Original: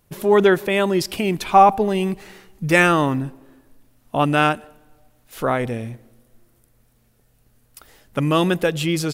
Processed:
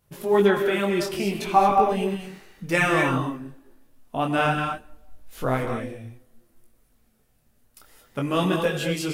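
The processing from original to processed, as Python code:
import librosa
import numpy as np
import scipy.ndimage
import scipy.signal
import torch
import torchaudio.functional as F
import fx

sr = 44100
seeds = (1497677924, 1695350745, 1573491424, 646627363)

y = fx.low_shelf(x, sr, hz=87.0, db=12.0, at=(4.45, 5.61))
y = fx.rev_gated(y, sr, seeds[0], gate_ms=250, shape='rising', drr_db=4.5)
y = fx.detune_double(y, sr, cents=20)
y = F.gain(torch.from_numpy(y), -2.0).numpy()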